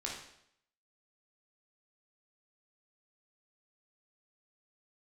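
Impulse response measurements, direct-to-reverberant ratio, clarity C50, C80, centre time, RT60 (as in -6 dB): -3.0 dB, 2.5 dB, 6.5 dB, 43 ms, 0.70 s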